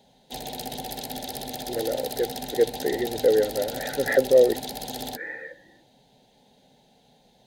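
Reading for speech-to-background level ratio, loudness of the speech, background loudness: 10.0 dB, -24.0 LUFS, -34.0 LUFS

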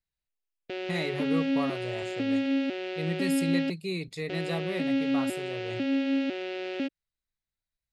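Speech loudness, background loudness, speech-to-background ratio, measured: -35.5 LUFS, -30.5 LUFS, -5.0 dB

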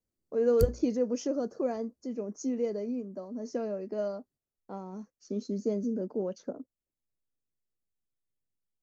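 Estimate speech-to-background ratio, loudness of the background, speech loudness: 3.0 dB, -35.5 LUFS, -32.5 LUFS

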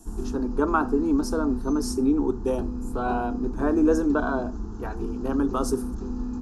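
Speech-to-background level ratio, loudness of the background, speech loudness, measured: 7.0 dB, -33.0 LUFS, -26.0 LUFS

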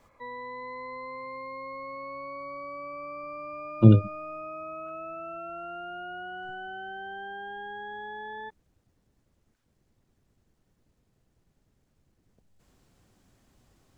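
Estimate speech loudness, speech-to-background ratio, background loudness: -20.0 LUFS, 19.0 dB, -39.0 LUFS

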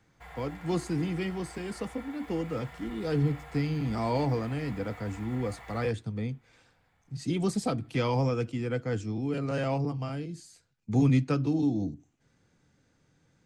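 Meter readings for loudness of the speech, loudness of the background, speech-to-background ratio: -31.0 LUFS, -47.5 LUFS, 16.5 dB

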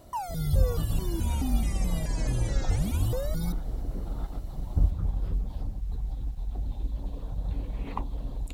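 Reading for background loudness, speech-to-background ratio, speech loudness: -33.0 LUFS, 0.0 dB, -33.0 LUFS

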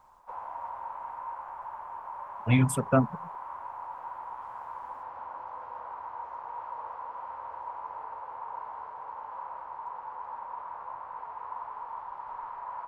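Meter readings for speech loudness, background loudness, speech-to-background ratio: -26.0 LUFS, -40.5 LUFS, 14.5 dB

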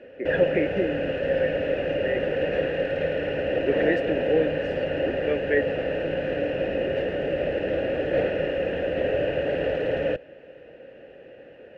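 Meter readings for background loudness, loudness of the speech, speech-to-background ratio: -26.5 LUFS, -28.0 LUFS, -1.5 dB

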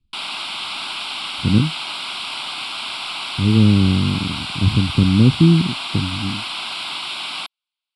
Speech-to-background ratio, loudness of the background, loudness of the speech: 8.0 dB, -25.5 LUFS, -17.5 LUFS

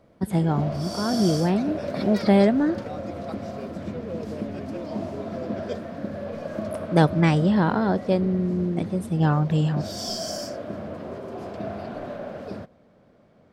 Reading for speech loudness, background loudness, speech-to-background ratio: -23.0 LUFS, -33.0 LUFS, 10.0 dB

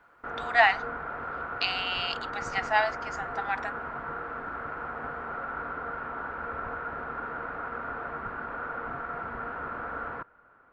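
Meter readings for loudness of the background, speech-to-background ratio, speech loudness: -35.5 LUFS, 7.5 dB, -28.0 LUFS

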